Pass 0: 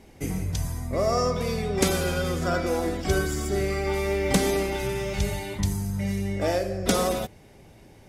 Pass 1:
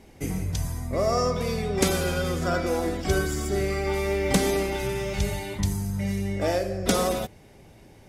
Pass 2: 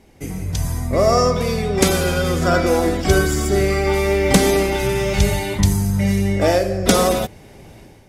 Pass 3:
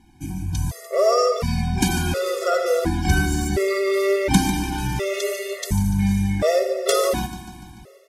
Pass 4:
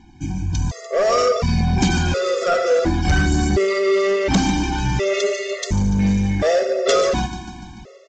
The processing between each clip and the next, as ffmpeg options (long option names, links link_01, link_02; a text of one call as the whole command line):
ffmpeg -i in.wav -af anull out.wav
ffmpeg -i in.wav -af "dynaudnorm=framelen=370:gausssize=3:maxgain=11.5dB" out.wav
ffmpeg -i in.wav -af "aecho=1:1:146|292|438|584|730|876:0.224|0.132|0.0779|0.046|0.0271|0.016,afftfilt=real='re*gt(sin(2*PI*0.7*pts/sr)*(1-2*mod(floor(b*sr/1024/360),2)),0)':imag='im*gt(sin(2*PI*0.7*pts/sr)*(1-2*mod(floor(b*sr/1024/360),2)),0)':win_size=1024:overlap=0.75,volume=-1.5dB" out.wav
ffmpeg -i in.wav -af "aresample=16000,asoftclip=type=tanh:threshold=-16dB,aresample=44100,aphaser=in_gain=1:out_gain=1:delay=4.5:decay=0.21:speed=0.58:type=sinusoidal,volume=4.5dB" out.wav